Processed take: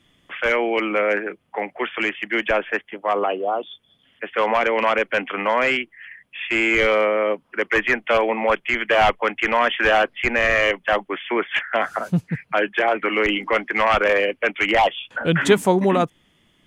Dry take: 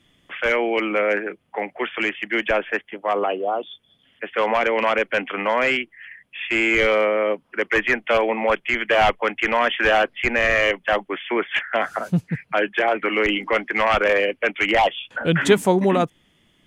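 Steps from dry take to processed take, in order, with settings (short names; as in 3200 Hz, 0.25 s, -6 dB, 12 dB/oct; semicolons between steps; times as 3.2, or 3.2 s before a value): bell 1100 Hz +2 dB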